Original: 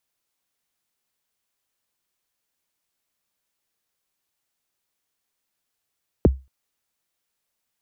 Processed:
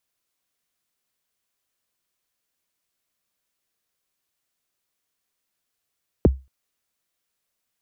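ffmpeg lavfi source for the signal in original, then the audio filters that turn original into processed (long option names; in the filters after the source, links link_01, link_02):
-f lavfi -i "aevalsrc='0.422*pow(10,-3*t/0.26)*sin(2*PI*(560*0.021/log(66/560)*(exp(log(66/560)*min(t,0.021)/0.021)-1)+66*max(t-0.021,0)))':duration=0.23:sample_rate=44100"
-af "bandreject=frequency=860:width=12"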